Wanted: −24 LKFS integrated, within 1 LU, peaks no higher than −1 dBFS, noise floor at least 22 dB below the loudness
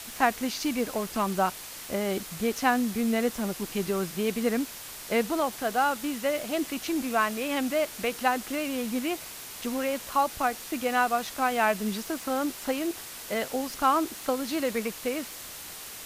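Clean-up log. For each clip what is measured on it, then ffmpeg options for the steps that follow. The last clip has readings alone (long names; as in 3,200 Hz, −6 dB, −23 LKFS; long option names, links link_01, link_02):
background noise floor −42 dBFS; target noise floor −51 dBFS; integrated loudness −28.5 LKFS; sample peak −9.5 dBFS; target loudness −24.0 LKFS
→ -af "afftdn=noise_reduction=9:noise_floor=-42"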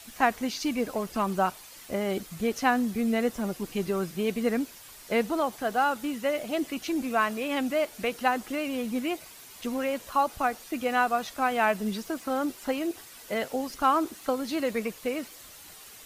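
background noise floor −48 dBFS; target noise floor −51 dBFS
→ -af "afftdn=noise_reduction=6:noise_floor=-48"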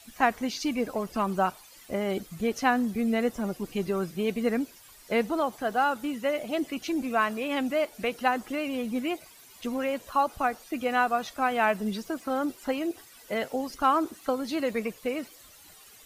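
background noise floor −53 dBFS; integrated loudness −29.0 LKFS; sample peak −10.0 dBFS; target loudness −24.0 LKFS
→ -af "volume=5dB"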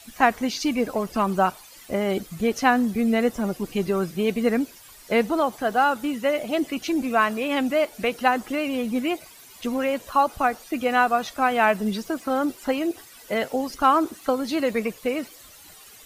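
integrated loudness −24.0 LKFS; sample peak −5.0 dBFS; background noise floor −48 dBFS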